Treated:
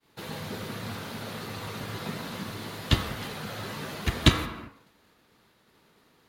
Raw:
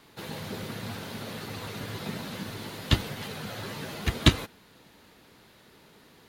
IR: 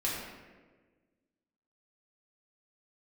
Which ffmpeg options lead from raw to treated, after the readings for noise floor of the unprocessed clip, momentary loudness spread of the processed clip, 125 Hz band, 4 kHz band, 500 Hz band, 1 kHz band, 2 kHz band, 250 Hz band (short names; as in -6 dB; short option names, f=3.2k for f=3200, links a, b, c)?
-57 dBFS, 14 LU, 0.0 dB, +0.5 dB, +0.5 dB, +2.5 dB, +1.0 dB, 0.0 dB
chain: -filter_complex "[0:a]agate=range=-33dB:threshold=-49dB:ratio=3:detection=peak,asplit=2[a][b];[b]equalizer=f=1.2k:w=1.1:g=14.5[c];[1:a]atrim=start_sample=2205,afade=t=out:st=0.41:d=0.01,atrim=end_sample=18522,adelay=38[d];[c][d]afir=irnorm=-1:irlink=0,volume=-19.5dB[e];[a][e]amix=inputs=2:normalize=0"